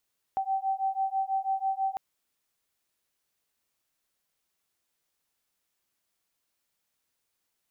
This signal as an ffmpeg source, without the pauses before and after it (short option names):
-f lavfi -i "aevalsrc='0.0335*(sin(2*PI*770*t)+sin(2*PI*776.1*t))':d=1.6:s=44100"